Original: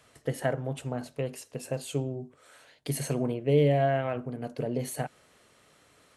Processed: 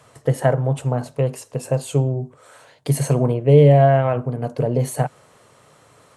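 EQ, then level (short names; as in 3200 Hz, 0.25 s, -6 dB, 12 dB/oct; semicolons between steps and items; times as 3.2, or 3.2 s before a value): ten-band EQ 125 Hz +12 dB, 500 Hz +6 dB, 1000 Hz +9 dB, 8000 Hz +5 dB; +3.0 dB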